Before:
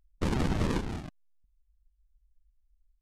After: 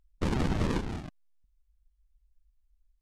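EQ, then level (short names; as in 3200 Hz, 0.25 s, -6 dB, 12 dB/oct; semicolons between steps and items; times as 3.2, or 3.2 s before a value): high shelf 9600 Hz -5 dB; 0.0 dB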